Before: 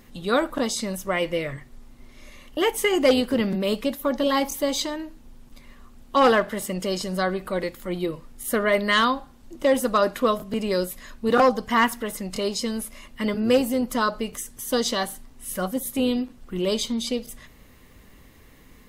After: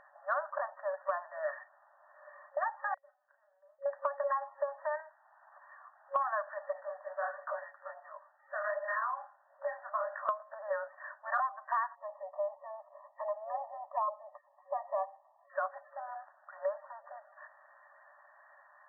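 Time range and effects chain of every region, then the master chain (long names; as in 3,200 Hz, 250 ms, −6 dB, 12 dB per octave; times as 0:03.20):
0:02.94–0:03.86: gate with flip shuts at −21 dBFS, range −33 dB + downward compressor 10 to 1, threshold −56 dBFS + double-tracking delay 35 ms −4.5 dB
0:05.00–0:06.16: Butterworth high-pass 650 Hz + multiband upward and downward compressor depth 70%
0:06.73–0:10.29: Butterworth high-pass 370 Hz + downward compressor 2.5 to 1, threshold −30 dBFS + micro pitch shift up and down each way 50 cents
0:11.95–0:15.50: Butterworth band-reject 1,500 Hz, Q 1.4 + parametric band 2,300 Hz −15 dB 0.45 octaves
whole clip: brick-wall band-pass 550–1,900 Hz; dynamic equaliser 1,100 Hz, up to +7 dB, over −39 dBFS, Q 4.3; downward compressor 10 to 1, threshold −32 dBFS; level +2 dB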